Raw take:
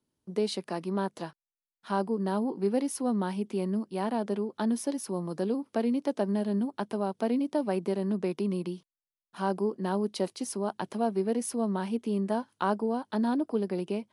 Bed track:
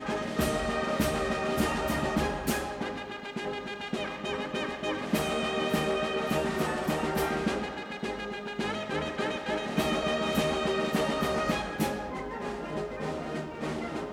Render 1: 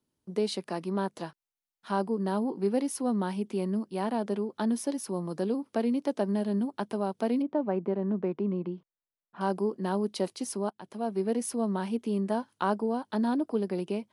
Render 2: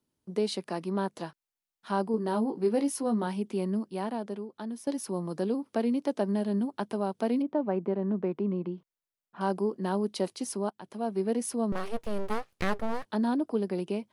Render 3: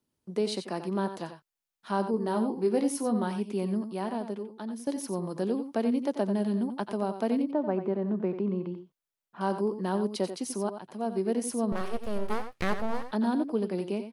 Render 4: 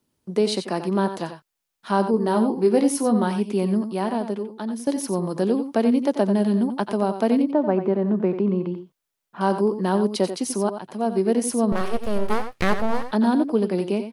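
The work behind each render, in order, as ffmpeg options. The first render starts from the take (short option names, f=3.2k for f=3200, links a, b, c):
-filter_complex "[0:a]asettb=1/sr,asplit=3[a][b][c];[a]atrim=end=7.424[d];[b]atrim=start=7.42:end=9.41,asetpts=PTS-STARTPTS,afade=t=in:d=0.004:c=qsin,afade=t=out:st=1.986:d=0.004:c=qsin,lowpass=1.6k[e];[c]atrim=start=9.406[f];[d][e]acrossfade=d=0.004:c1=hsin:c2=qsin[g];[g][f]acrossfade=d=0.004:c1=qsin:c2=hsin,asplit=2[h][i];[h]atrim=end=10.7,asetpts=PTS-STARTPTS,afade=t=out:st=10.696:d=0.004:c=hsin:silence=0.0749894[j];[i]atrim=start=10.7,asetpts=PTS-STARTPTS,afade=t=in:d=0.56:silence=0.0749894[k];[j][k]concat=n=2:v=0:a=1"
-filter_complex "[0:a]asettb=1/sr,asplit=3[a][b][c];[a]atrim=end=2.124[d];[b]atrim=start=2.12:end=3.27,asetpts=PTS-STARTPTS,afade=t=in:d=0.004:c=qsin,afade=t=out:st=1.146:d=0.004:c=qsin,asplit=2[e][f];[f]adelay=18,volume=-7dB[g];[e][g]amix=inputs=2:normalize=0,atrim=end_sample=50715[h];[c]atrim=start=3.266[i];[d][h]acrossfade=d=0.004:c1=hsin:c2=qsin[j];[j][i]acrossfade=d=0.004:c1=qsin:c2=hsin,asettb=1/sr,asplit=3[k][l][m];[k]atrim=end=11.724[n];[l]atrim=start=11.72:end=13.06,asetpts=PTS-STARTPTS,afade=t=in:d=0.004:c=qsin,afade=t=out:st=1.336:d=0.004:c=qsin,aeval=exprs='abs(val(0))':c=same[o];[m]atrim=start=13.056[p];[n][o]acrossfade=d=0.004:c1=hsin:c2=qsin[q];[q][p]acrossfade=d=0.004:c1=qsin:c2=hsin,asplit=2[r][s];[r]atrim=end=4.87,asetpts=PTS-STARTPTS,afade=t=out:st=3.83:d=1.04:c=qua:silence=0.334965[t];[s]atrim=start=4.87,asetpts=PTS-STARTPTS,afade=t=in:d=0.004:c=hsin:silence=0.334965[u];[t][u]concat=n=2:v=0:a=1"
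-af "aecho=1:1:83|91:0.112|0.316"
-af "volume=8dB"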